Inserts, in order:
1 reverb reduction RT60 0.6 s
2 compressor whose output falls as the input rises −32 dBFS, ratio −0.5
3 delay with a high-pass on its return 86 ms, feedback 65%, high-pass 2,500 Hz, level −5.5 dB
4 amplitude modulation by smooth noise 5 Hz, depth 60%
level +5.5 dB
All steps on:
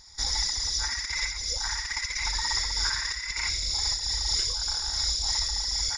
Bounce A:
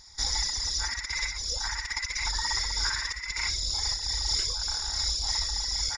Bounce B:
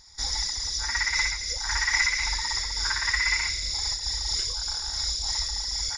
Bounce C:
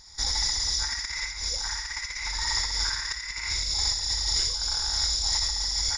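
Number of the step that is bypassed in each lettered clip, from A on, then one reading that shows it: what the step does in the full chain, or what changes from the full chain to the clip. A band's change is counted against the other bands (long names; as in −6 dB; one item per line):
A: 3, 8 kHz band −1.5 dB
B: 2, change in crest factor +2.5 dB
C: 1, change in momentary loudness spread +3 LU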